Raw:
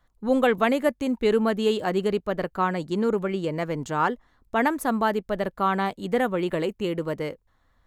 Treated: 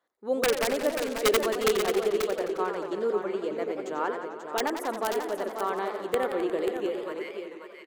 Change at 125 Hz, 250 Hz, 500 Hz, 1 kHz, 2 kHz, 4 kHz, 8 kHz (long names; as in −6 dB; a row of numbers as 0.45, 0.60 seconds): −16.0, −8.5, −1.5, −5.0, −4.0, +1.0, +7.5 decibels